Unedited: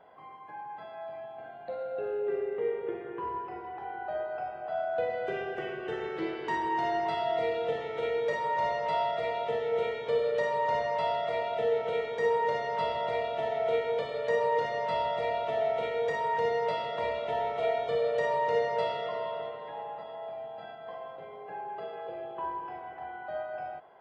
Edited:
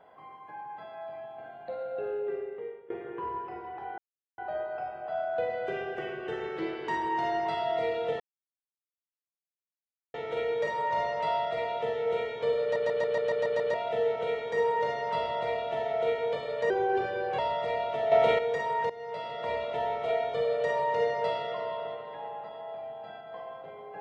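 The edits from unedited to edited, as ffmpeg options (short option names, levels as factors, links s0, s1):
-filter_complex "[0:a]asplit=17[s0][s1][s2][s3][s4][s5][s6][s7][s8][s9][s10][s11][s12][s13][s14][s15][s16];[s0]atrim=end=2.9,asetpts=PTS-STARTPTS,afade=t=out:st=2.11:d=0.79:silence=0.0891251[s17];[s1]atrim=start=2.9:end=3.98,asetpts=PTS-STARTPTS,afade=t=in:d=0.004:c=hsin:silence=0.0891251,afade=t=out:st=1.076:d=0.004:c=hsin,apad=pad_dur=0.4[s18];[s2]atrim=start=3.98:end=7.8,asetpts=PTS-STARTPTS,afade=t=in:d=0.004:c=hsin,afade=t=out:st=3.816:d=0.004:c=hsin,apad=pad_dur=1.94[s19];[s3]atrim=start=7.8:end=10.422,asetpts=PTS-STARTPTS,afade=t=in:d=0.004:c=hsin[s20];[s4]atrim=start=10.278:end=10.422[s21];[s5]atrim=start=10.278:end=10.422[s22];[s6]atrim=start=10.278:end=10.422[s23];[s7]atrim=start=10.278:end=10.422[s24];[s8]atrim=start=10.278:end=10.422[s25];[s9]atrim=start=10.278:end=10.422[s26];[s10]atrim=start=10.278:end=10.422[s27];[s11]atrim=start=11.398:end=14.364[s28];[s12]atrim=start=14.36:end=14.93,asetpts=PTS-STARTPTS,asetrate=36603,aresample=44100[s29];[s13]atrim=start=14.926:end=15.662[s30];[s14]atrim=start=15.658:end=15.932,asetpts=PTS-STARTPTS,volume=2.66[s31];[s15]atrim=start=15.928:end=16.44,asetpts=PTS-STARTPTS,afade=t=out:st=0.508:d=0.004:c=hsin:silence=0.112202[s32];[s16]atrim=start=16.44,asetpts=PTS-STARTPTS,afade=t=in:d=0.65:silence=0.112202[s33];[s17][s18][s19][s20]concat=n=4:v=0:a=1[s34];[s34][s21]acrossfade=d=0.004:c1=hsin:c2=hsin[s35];[s35][s22]acrossfade=d=0.004:c1=hsin:c2=hsin[s36];[s36][s23]acrossfade=d=0.004:c1=hsin:c2=hsin[s37];[s37][s24]acrossfade=d=0.004:c1=hsin:c2=hsin[s38];[s38][s25]acrossfade=d=0.004:c1=hsin:c2=hsin[s39];[s39][s26]acrossfade=d=0.004:c1=hsin:c2=hsin[s40];[s40][s27]acrossfade=d=0.004:c1=hsin:c2=hsin[s41];[s41][s28]acrossfade=d=0.004:c1=hsin:c2=hsin[s42];[s42][s29]acrossfade=d=0.004:c1=hsin:c2=hsin[s43];[s43][s30]acrossfade=d=0.004:c1=hsin:c2=hsin[s44];[s44][s31]acrossfade=d=0.004:c1=hsin:c2=hsin[s45];[s32][s33]concat=n=2:v=0:a=1[s46];[s45][s46]acrossfade=d=0.004:c1=hsin:c2=hsin"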